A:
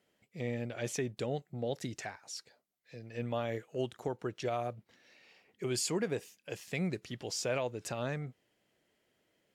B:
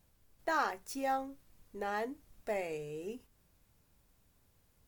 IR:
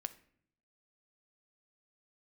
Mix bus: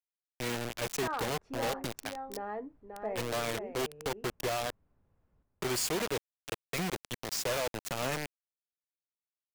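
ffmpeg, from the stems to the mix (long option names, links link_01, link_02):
-filter_complex "[0:a]dynaudnorm=framelen=190:gausssize=3:maxgain=5dB,acrusher=bits=4:mix=0:aa=0.000001,volume=-2dB[link_01];[1:a]lowpass=1300,adelay=550,volume=-1.5dB,asplit=2[link_02][link_03];[link_03]volume=-6.5dB,aecho=0:1:533:1[link_04];[link_01][link_02][link_04]amix=inputs=3:normalize=0,acrossover=split=420[link_05][link_06];[link_05]acompressor=threshold=-34dB:ratio=6[link_07];[link_07][link_06]amix=inputs=2:normalize=0,aeval=exprs='0.0501*(abs(mod(val(0)/0.0501+3,4)-2)-1)':channel_layout=same"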